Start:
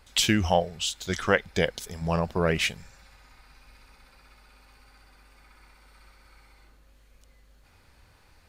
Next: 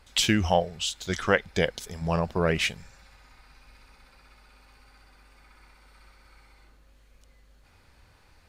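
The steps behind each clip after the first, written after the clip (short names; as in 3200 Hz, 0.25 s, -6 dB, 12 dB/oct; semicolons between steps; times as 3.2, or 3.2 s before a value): high shelf 12000 Hz -6 dB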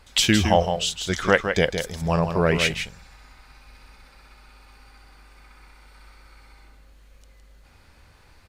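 echo 0.162 s -7.5 dB; gain +4 dB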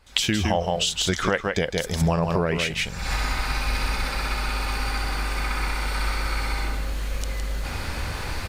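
recorder AGC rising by 70 dB/s; gain -6 dB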